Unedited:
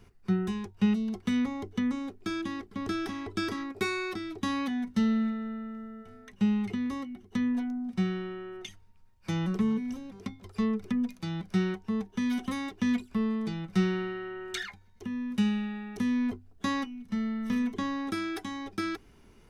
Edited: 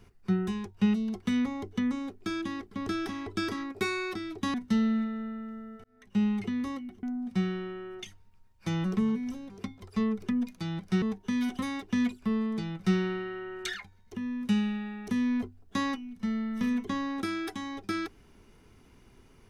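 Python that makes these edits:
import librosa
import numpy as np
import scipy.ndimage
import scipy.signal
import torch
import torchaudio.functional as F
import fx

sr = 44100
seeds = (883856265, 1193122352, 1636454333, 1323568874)

y = fx.edit(x, sr, fx.cut(start_s=4.54, length_s=0.26),
    fx.fade_in_span(start_s=6.1, length_s=0.39),
    fx.cut(start_s=7.29, length_s=0.36),
    fx.cut(start_s=11.64, length_s=0.27), tone=tone)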